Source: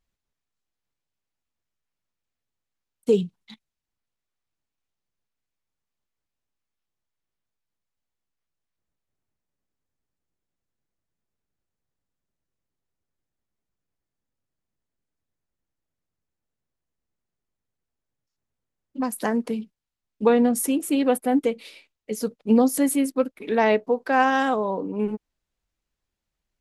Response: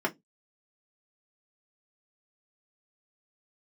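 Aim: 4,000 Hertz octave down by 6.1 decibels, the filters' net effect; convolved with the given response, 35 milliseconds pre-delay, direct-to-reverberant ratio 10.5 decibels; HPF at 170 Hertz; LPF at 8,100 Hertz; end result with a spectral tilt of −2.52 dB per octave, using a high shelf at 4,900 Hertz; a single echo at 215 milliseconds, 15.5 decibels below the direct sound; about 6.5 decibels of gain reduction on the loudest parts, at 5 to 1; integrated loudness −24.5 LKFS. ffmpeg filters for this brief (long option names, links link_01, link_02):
-filter_complex "[0:a]highpass=170,lowpass=8100,equalizer=frequency=4000:width_type=o:gain=-6,highshelf=frequency=4900:gain=-6.5,acompressor=threshold=-21dB:ratio=5,aecho=1:1:215:0.168,asplit=2[link_01][link_02];[1:a]atrim=start_sample=2205,adelay=35[link_03];[link_02][link_03]afir=irnorm=-1:irlink=0,volume=-20dB[link_04];[link_01][link_04]amix=inputs=2:normalize=0,volume=2.5dB"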